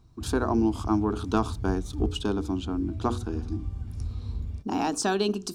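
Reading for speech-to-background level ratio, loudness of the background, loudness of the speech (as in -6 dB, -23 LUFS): 7.5 dB, -36.0 LUFS, -28.5 LUFS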